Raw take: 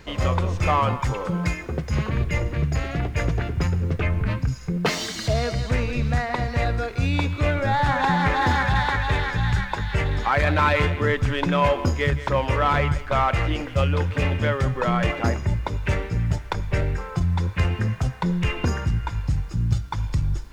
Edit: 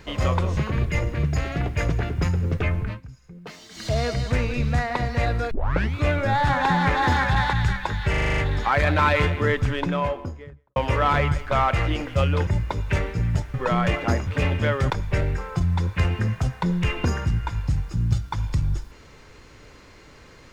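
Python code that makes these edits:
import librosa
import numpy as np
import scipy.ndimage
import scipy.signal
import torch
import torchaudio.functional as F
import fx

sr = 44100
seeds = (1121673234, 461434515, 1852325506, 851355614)

y = fx.studio_fade_out(x, sr, start_s=11.07, length_s=1.29)
y = fx.edit(y, sr, fx.cut(start_s=0.57, length_s=1.39),
    fx.fade_down_up(start_s=4.0, length_s=1.48, db=-17.5, fade_s=0.4, curve='qsin'),
    fx.tape_start(start_s=6.9, length_s=0.44),
    fx.cut(start_s=8.92, length_s=0.49),
    fx.stutter(start_s=9.98, slice_s=0.04, count=8),
    fx.swap(start_s=14.07, length_s=0.63, other_s=15.43, other_length_s=1.07), tone=tone)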